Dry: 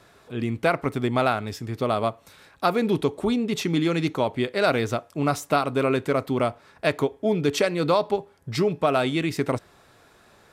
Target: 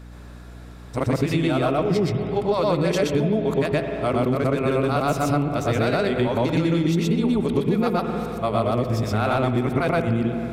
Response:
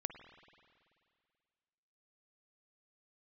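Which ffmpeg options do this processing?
-filter_complex "[0:a]areverse,acontrast=44,asplit=2[link_01][link_02];[1:a]atrim=start_sample=2205,lowshelf=frequency=340:gain=10.5,adelay=122[link_03];[link_02][link_03]afir=irnorm=-1:irlink=0,volume=2.5dB[link_04];[link_01][link_04]amix=inputs=2:normalize=0,aeval=exprs='val(0)+0.0178*(sin(2*PI*60*n/s)+sin(2*PI*2*60*n/s)/2+sin(2*PI*3*60*n/s)/3+sin(2*PI*4*60*n/s)/4+sin(2*PI*5*60*n/s)/5)':channel_layout=same,acompressor=threshold=-13dB:ratio=6,volume=-4.5dB"

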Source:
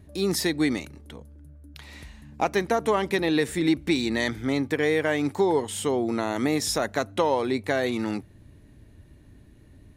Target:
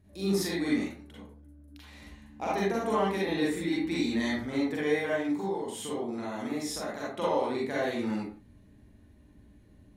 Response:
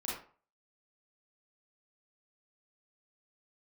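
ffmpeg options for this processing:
-filter_complex "[0:a]asettb=1/sr,asplit=3[link_01][link_02][link_03];[link_01]atrim=end=5.094[link_04];[link_02]atrim=start=5.09:end=7.1,asetpts=PTS-STARTPTS,afade=type=in:duration=0.004:curve=qsin,afade=type=out:start_time=2.006:duration=0.004:curve=qsin,acompressor=threshold=-25dB:ratio=6[link_05];[link_03]atrim=start=7.096[link_06];[link_04][link_05]acrossfade=duration=0.004:curve1=hsin:curve2=qsin[link_07];[link_07][link_06]acrossfade=duration=0.004:curve1=qsin:curve2=hsin[link_08];[1:a]atrim=start_sample=2205,afade=type=out:start_time=0.24:duration=0.01,atrim=end_sample=11025,asetrate=36162,aresample=44100[link_09];[link_08][link_09]afir=irnorm=-1:irlink=0,volume=-8.5dB"

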